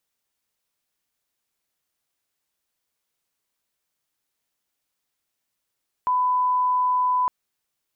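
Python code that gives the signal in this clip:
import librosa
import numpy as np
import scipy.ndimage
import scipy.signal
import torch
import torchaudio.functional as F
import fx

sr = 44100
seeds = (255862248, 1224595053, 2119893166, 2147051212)

y = fx.lineup_tone(sr, length_s=1.21, level_db=-18.0)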